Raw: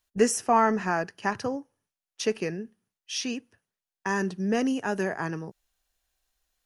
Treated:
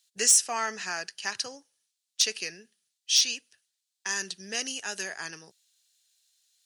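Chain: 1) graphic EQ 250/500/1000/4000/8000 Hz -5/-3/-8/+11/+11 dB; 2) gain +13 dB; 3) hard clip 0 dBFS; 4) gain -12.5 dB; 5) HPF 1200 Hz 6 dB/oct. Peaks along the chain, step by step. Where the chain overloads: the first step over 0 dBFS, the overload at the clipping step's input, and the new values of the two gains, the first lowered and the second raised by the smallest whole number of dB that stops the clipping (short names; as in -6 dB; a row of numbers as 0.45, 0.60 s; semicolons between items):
-6.0, +7.0, 0.0, -12.5, -11.0 dBFS; step 2, 7.0 dB; step 2 +6 dB, step 4 -5.5 dB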